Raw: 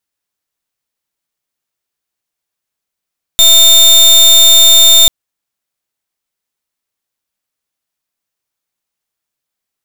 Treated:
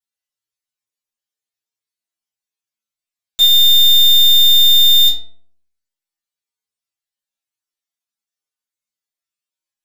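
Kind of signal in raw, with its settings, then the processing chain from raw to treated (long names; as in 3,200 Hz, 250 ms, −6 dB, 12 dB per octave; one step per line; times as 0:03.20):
pulse wave 3,620 Hz, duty 30% −4.5 dBFS 1.69 s
parametric band 4,700 Hz +6 dB 2.6 octaves
stiff-string resonator 110 Hz, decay 0.67 s, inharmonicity 0.002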